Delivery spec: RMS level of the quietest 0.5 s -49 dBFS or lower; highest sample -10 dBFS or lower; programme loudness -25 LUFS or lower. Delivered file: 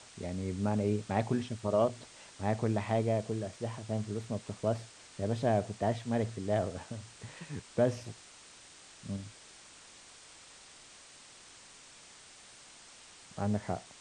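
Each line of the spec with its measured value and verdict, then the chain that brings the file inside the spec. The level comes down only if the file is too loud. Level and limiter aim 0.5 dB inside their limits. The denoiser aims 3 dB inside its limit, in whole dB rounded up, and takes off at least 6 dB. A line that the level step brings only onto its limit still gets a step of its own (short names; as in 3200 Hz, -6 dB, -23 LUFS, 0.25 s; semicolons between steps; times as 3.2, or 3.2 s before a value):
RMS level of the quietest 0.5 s -55 dBFS: OK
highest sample -15.5 dBFS: OK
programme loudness -34.0 LUFS: OK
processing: none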